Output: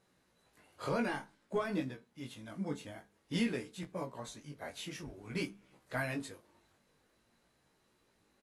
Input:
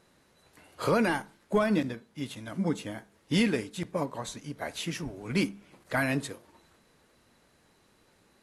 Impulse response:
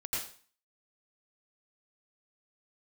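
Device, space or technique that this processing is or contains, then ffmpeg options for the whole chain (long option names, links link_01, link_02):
double-tracked vocal: -filter_complex "[0:a]asplit=2[link_01][link_02];[link_02]adelay=22,volume=-11dB[link_03];[link_01][link_03]amix=inputs=2:normalize=0,flanger=delay=15.5:depth=5.2:speed=0.52,asettb=1/sr,asplit=3[link_04][link_05][link_06];[link_04]atrim=end=0.824[link_07];[link_05]atrim=start=0.82:end=1.65,asetpts=PTS-STARTPTS,afade=type=in:duration=0.004:curve=qsin,afade=type=out:start_time=0.826:duration=0.004:curve=qsin,lowpass=9900[link_08];[link_06]atrim=start=1.646[link_09];[link_07][link_08]acrossfade=duration=0.004:curve1=hsin:curve2=qsin[link_10];[link_10][link_09]acrossfade=duration=0.004:curve1=qsin:curve2=hsin,volume=-6dB"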